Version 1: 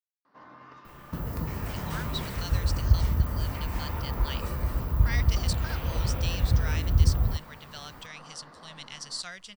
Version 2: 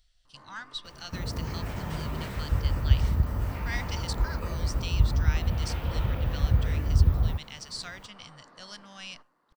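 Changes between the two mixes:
speech: entry -1.40 s; first sound -4.5 dB; master: add treble shelf 9.4 kHz -10.5 dB

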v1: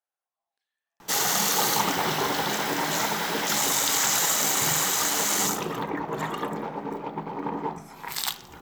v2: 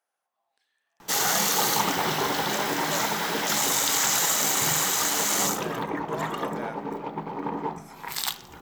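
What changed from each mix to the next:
speech +11.5 dB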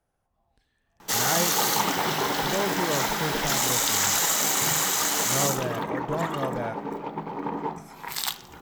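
speech: remove Bessel high-pass 960 Hz, order 2

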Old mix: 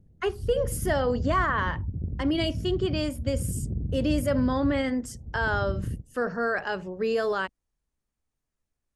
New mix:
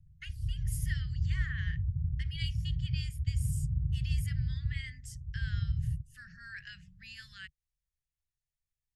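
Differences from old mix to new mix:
speech -7.5 dB; master: add Chebyshev band-stop 150–1800 Hz, order 4

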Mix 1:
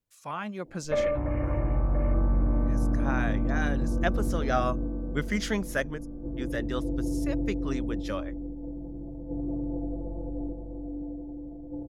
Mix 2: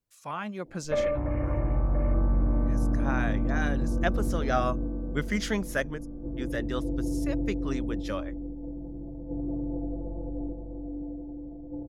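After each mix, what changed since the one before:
background: add distance through air 150 m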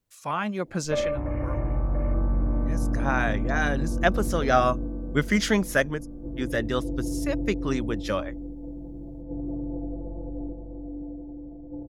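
speech +6.5 dB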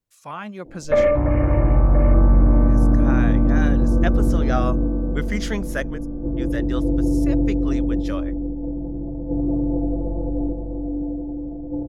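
speech -4.5 dB; background +10.5 dB

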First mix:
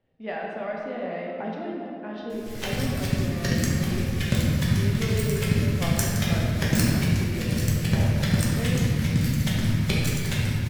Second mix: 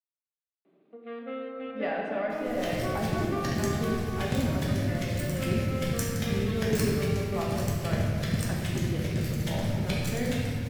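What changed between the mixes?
speech: entry +1.55 s; first sound +12.0 dB; second sound -6.5 dB

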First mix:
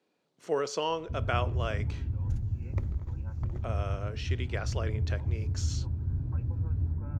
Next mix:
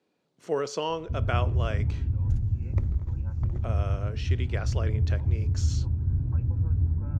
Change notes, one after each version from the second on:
master: add bass shelf 260 Hz +6 dB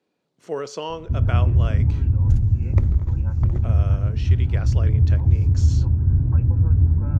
background +8.5 dB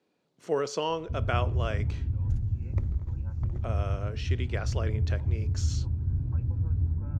background -11.0 dB

